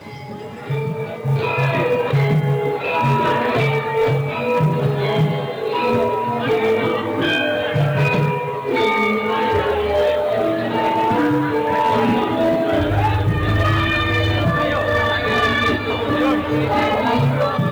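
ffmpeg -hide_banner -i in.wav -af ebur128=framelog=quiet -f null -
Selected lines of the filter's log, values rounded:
Integrated loudness:
  I:         -18.2 LUFS
  Threshold: -28.3 LUFS
Loudness range:
  LRA:         1.4 LU
  Threshold: -38.2 LUFS
  LRA low:   -18.9 LUFS
  LRA high:  -17.5 LUFS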